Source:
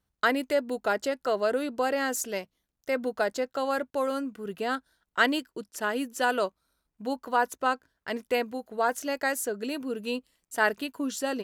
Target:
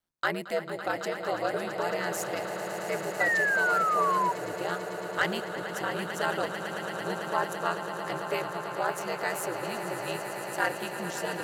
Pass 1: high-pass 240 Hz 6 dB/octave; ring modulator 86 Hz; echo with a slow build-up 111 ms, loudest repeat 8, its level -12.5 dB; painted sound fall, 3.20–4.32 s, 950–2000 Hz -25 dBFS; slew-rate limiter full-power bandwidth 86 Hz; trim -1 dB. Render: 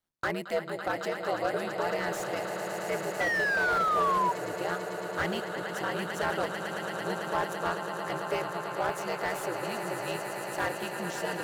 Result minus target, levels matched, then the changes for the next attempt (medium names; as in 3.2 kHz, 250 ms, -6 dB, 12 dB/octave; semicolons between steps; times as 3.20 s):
slew-rate limiter: distortion +21 dB
change: slew-rate limiter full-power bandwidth 314 Hz